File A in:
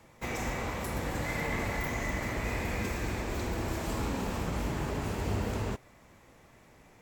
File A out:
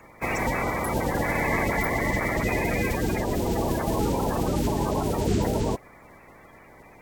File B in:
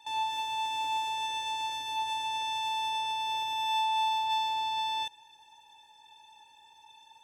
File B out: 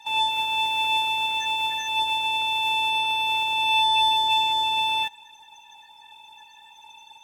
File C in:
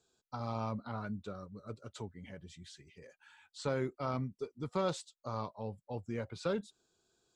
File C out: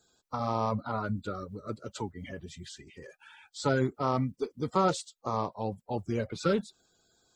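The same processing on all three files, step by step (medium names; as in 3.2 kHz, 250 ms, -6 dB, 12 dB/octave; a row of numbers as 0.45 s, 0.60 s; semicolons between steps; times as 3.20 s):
coarse spectral quantiser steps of 30 dB; peak normalisation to -12 dBFS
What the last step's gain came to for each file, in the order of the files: +8.5 dB, +8.5 dB, +8.0 dB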